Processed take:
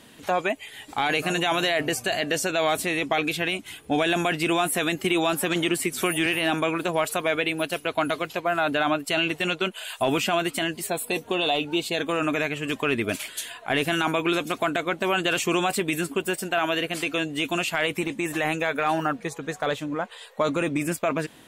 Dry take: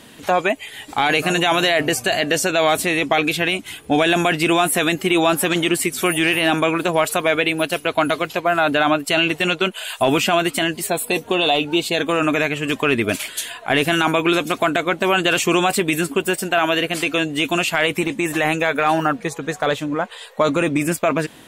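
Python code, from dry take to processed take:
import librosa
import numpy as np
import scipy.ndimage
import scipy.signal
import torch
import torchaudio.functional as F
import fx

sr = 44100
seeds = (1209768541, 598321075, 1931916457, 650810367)

y = fx.band_squash(x, sr, depth_pct=70, at=(5.04, 6.26))
y = F.gain(torch.from_numpy(y), -6.5).numpy()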